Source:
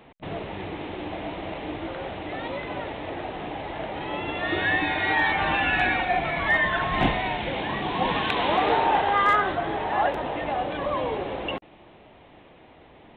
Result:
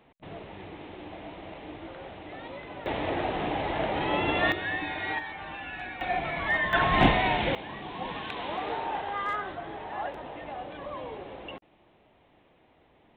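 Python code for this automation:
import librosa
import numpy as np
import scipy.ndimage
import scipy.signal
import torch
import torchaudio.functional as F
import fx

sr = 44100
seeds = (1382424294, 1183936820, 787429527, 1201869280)

y = fx.gain(x, sr, db=fx.steps((0.0, -9.0), (2.86, 3.5), (4.52, -8.0), (5.19, -15.5), (6.01, -5.0), (6.73, 2.0), (7.55, -11.0)))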